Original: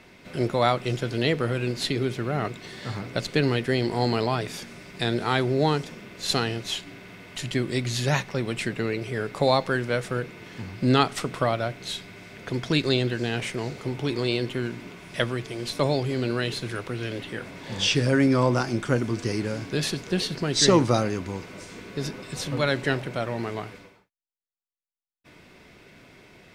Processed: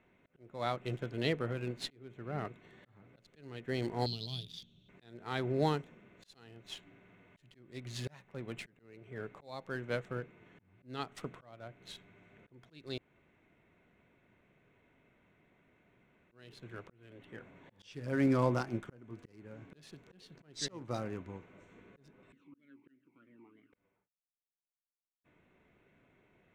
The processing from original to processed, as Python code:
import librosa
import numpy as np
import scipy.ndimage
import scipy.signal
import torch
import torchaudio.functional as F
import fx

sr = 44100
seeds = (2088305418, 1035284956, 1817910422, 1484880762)

y = fx.curve_eq(x, sr, hz=(170.0, 240.0, 2100.0, 3400.0, 11000.0), db=(0, -8, -28, 14, -18), at=(4.06, 4.89))
y = fx.vowel_sweep(y, sr, vowels='i-u', hz=3.1, at=(22.32, 23.73))
y = fx.edit(y, sr, fx.room_tone_fill(start_s=12.98, length_s=3.34), tone=tone)
y = fx.wiener(y, sr, points=9)
y = fx.auto_swell(y, sr, attack_ms=467.0)
y = fx.upward_expand(y, sr, threshold_db=-37.0, expansion=1.5)
y = F.gain(torch.from_numpy(y), -7.0).numpy()